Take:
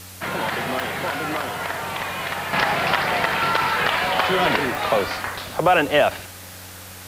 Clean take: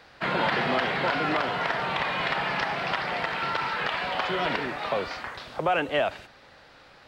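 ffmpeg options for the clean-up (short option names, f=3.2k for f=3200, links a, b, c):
-af "adeclick=t=4,bandreject=f=92.6:t=h:w=4,bandreject=f=185.2:t=h:w=4,bandreject=f=277.8:t=h:w=4,afwtdn=0.01,asetnsamples=n=441:p=0,asendcmd='2.53 volume volume -8dB',volume=0dB"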